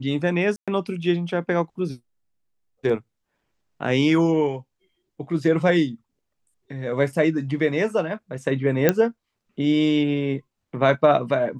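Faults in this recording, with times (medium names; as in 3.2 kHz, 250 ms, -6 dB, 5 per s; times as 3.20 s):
0.56–0.68 s: dropout 116 ms
8.89 s: pop -3 dBFS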